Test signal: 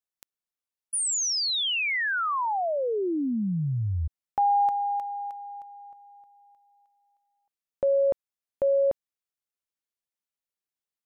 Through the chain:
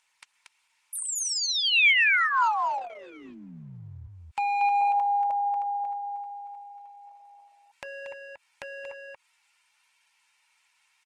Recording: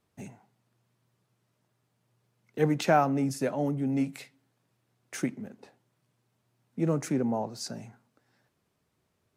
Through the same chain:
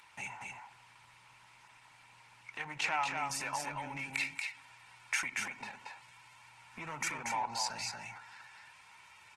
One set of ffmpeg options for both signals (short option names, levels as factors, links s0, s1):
-filter_complex "[0:a]highpass=f=68:p=1,aecho=1:1:2.2:0.39,acompressor=threshold=0.01:ratio=3:attack=0.54:release=131:knee=6:detection=rms,asoftclip=type=hard:threshold=0.0188,lowshelf=f=650:t=q:w=3:g=-13.5,aresample=22050,aresample=44100,equalizer=f=2400:w=2.2:g=11.5,bandreject=f=1200:w=8.2,asplit=2[s0][s1];[s1]aecho=0:1:233:0.631[s2];[s0][s2]amix=inputs=2:normalize=0,acompressor=mode=upward:threshold=0.00316:ratio=1.5:attack=19:release=37:knee=2.83:detection=peak,volume=2.37" -ar 48000 -c:a libopus -b:a 16k